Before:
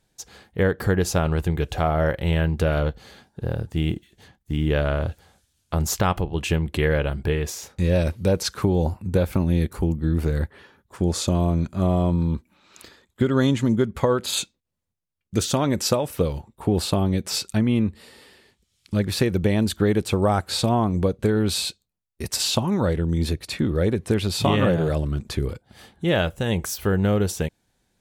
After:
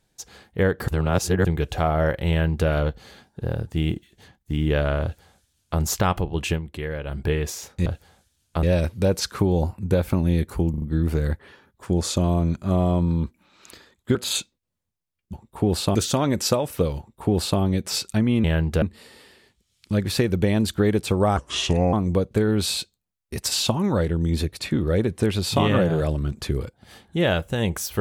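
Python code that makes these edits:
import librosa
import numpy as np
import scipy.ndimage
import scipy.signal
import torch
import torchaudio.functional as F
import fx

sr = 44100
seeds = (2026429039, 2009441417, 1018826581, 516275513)

y = fx.edit(x, sr, fx.reverse_span(start_s=0.88, length_s=0.57),
    fx.duplicate(start_s=2.3, length_s=0.38, to_s=17.84),
    fx.duplicate(start_s=5.03, length_s=0.77, to_s=7.86),
    fx.fade_down_up(start_s=6.49, length_s=0.69, db=-9.0, fade_s=0.13),
    fx.stutter(start_s=9.93, slice_s=0.04, count=4),
    fx.cut(start_s=13.26, length_s=0.91),
    fx.duplicate(start_s=16.38, length_s=0.62, to_s=15.35),
    fx.speed_span(start_s=20.39, length_s=0.42, speed=0.75), tone=tone)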